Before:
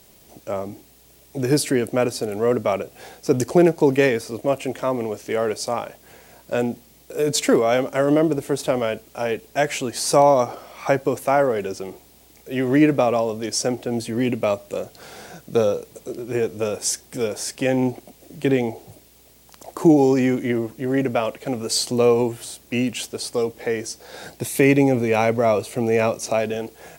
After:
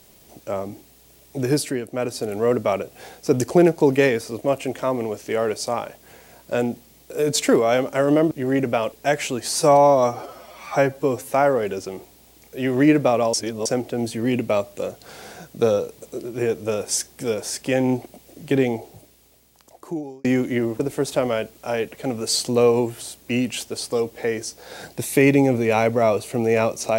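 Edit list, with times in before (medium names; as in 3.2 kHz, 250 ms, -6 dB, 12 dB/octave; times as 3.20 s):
1.42–2.31 s: dip -8.5 dB, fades 0.43 s
8.31–9.43 s: swap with 20.73–21.34 s
10.11–11.26 s: stretch 1.5×
13.27–13.59 s: reverse
18.61–20.18 s: fade out linear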